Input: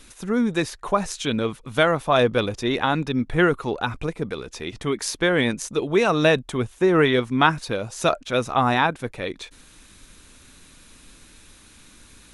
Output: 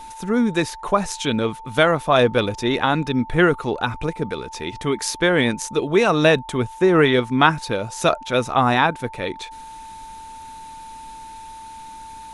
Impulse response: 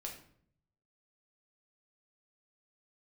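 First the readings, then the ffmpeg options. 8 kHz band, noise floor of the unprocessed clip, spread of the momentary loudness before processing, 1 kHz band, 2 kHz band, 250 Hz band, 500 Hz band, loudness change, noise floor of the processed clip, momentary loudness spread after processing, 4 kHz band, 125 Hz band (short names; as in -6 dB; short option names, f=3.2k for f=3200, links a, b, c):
+2.5 dB, -51 dBFS, 12 LU, +3.0 dB, +2.5 dB, +2.5 dB, +2.5 dB, +2.5 dB, -38 dBFS, 22 LU, +2.5 dB, +2.5 dB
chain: -af "aeval=exprs='val(0)+0.0126*sin(2*PI*890*n/s)':c=same,volume=2.5dB"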